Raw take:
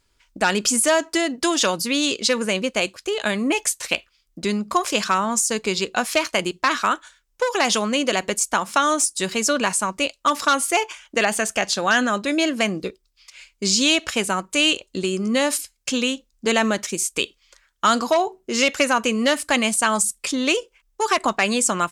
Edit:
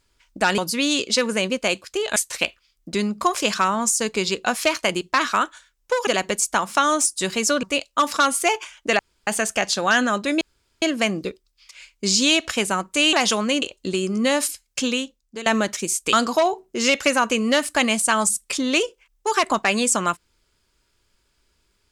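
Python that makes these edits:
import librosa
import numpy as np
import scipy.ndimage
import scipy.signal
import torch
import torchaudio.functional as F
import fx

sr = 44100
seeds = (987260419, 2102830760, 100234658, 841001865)

y = fx.edit(x, sr, fx.cut(start_s=0.58, length_s=1.12),
    fx.cut(start_s=3.28, length_s=0.38),
    fx.move(start_s=7.57, length_s=0.49, to_s=14.72),
    fx.cut(start_s=9.62, length_s=0.29),
    fx.insert_room_tone(at_s=11.27, length_s=0.28),
    fx.insert_room_tone(at_s=12.41, length_s=0.41),
    fx.fade_out_to(start_s=15.93, length_s=0.63, floor_db=-16.5),
    fx.cut(start_s=17.23, length_s=0.64), tone=tone)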